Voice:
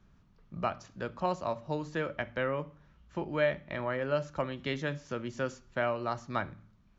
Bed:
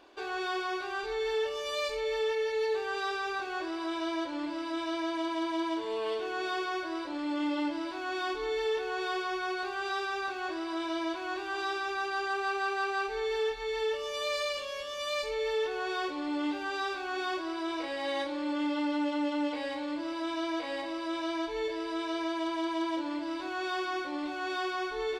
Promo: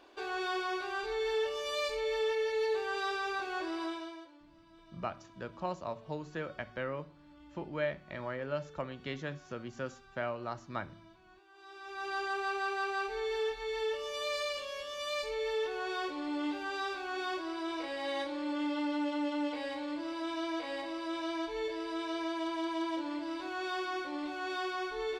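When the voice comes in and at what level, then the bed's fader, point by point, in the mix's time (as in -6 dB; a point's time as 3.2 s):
4.40 s, -5.5 dB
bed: 3.84 s -1.5 dB
4.43 s -25.5 dB
11.53 s -25.5 dB
12.11 s -3 dB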